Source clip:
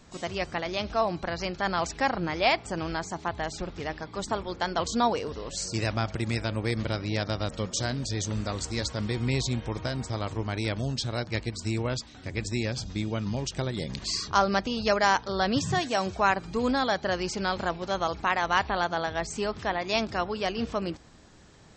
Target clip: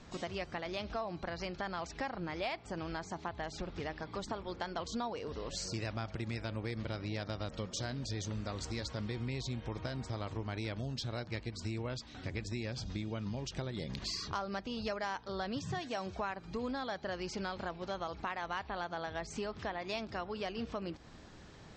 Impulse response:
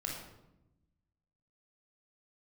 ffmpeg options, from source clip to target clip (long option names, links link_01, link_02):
-filter_complex "[0:a]lowpass=5500,acompressor=threshold=-37dB:ratio=4,asplit=2[link_01][link_02];[link_02]asoftclip=type=tanh:threshold=-32dB,volume=-10dB[link_03];[link_01][link_03]amix=inputs=2:normalize=0,volume=-2dB"